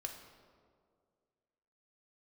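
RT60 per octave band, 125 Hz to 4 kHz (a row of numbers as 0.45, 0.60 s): 2.1, 2.2, 2.3, 1.9, 1.3, 1.1 s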